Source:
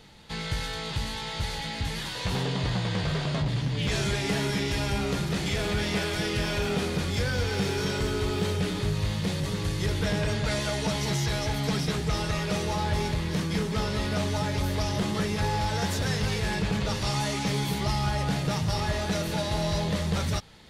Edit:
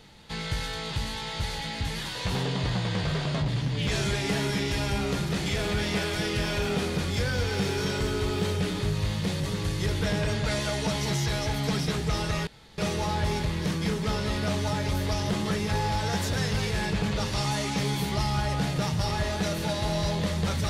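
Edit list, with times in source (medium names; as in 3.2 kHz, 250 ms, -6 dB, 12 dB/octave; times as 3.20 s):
12.47 s: insert room tone 0.31 s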